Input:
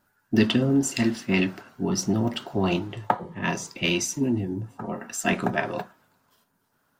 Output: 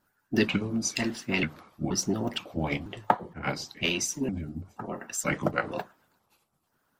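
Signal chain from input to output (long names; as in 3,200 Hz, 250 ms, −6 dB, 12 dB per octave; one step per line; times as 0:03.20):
pitch shifter gated in a rhythm −3.5 semitones, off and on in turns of 476 ms
harmonic and percussive parts rebalanced harmonic −10 dB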